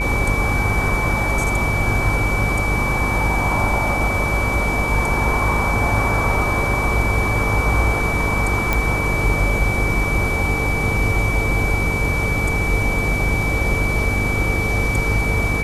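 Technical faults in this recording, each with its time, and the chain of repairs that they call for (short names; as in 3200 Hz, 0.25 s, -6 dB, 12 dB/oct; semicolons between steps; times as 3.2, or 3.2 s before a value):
buzz 50 Hz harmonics 11 -24 dBFS
tone 2300 Hz -22 dBFS
8.73 pop -4 dBFS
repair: de-click; de-hum 50 Hz, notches 11; notch 2300 Hz, Q 30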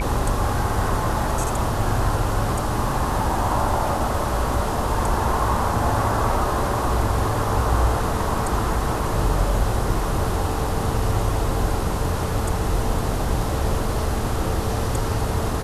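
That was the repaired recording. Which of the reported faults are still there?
none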